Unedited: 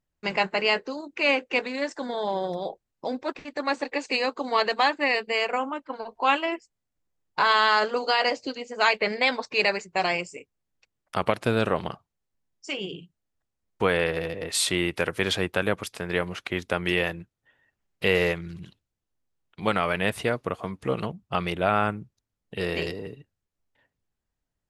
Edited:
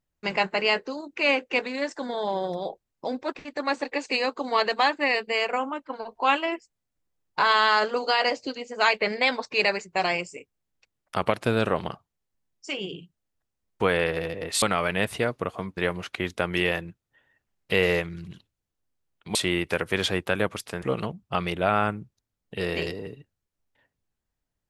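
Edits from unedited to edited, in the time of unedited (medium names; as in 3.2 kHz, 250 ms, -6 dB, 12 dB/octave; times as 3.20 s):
14.62–16.09 s: swap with 19.67–20.82 s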